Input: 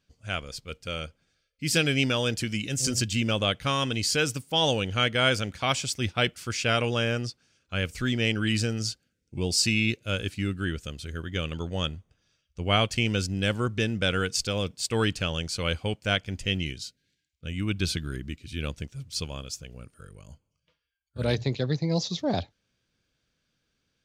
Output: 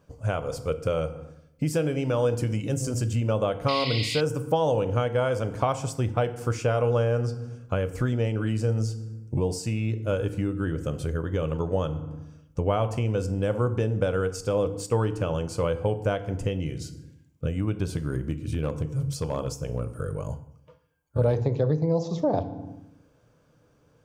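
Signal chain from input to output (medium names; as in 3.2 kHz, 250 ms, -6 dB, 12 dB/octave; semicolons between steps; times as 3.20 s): FDN reverb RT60 0.64 s, low-frequency decay 1.4×, high-frequency decay 0.7×, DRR 9.5 dB; compression 5:1, threshold -40 dBFS, peak gain reduction 19.5 dB; graphic EQ 125/500/1000/2000/4000 Hz +10/+11/+10/-5/-11 dB; 3.68–4.21 s: painted sound noise 1.9–5.2 kHz -40 dBFS; 18.30–19.97 s: overload inside the chain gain 28.5 dB; trim +8.5 dB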